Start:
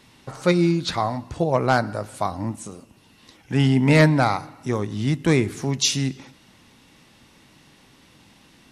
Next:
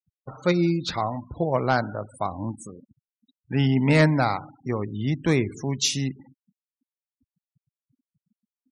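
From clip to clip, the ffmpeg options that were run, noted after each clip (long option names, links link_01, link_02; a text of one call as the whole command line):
ffmpeg -i in.wav -af "afftfilt=real='re*gte(hypot(re,im),0.02)':imag='im*gte(hypot(re,im),0.02)':win_size=1024:overlap=0.75,volume=-3dB" out.wav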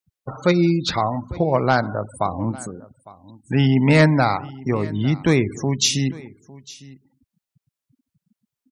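ffmpeg -i in.wav -filter_complex "[0:a]asplit=2[link_01][link_02];[link_02]acompressor=threshold=-28dB:ratio=6,volume=-2dB[link_03];[link_01][link_03]amix=inputs=2:normalize=0,aecho=1:1:855:0.0891,volume=2.5dB" out.wav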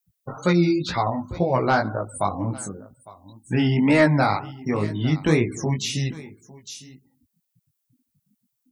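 ffmpeg -i in.wav -filter_complex "[0:a]acrossover=split=2600[link_01][link_02];[link_02]acompressor=threshold=-35dB:ratio=4:attack=1:release=60[link_03];[link_01][link_03]amix=inputs=2:normalize=0,flanger=delay=16:depth=4.8:speed=2,aemphasis=mode=production:type=50kf,volume=1dB" out.wav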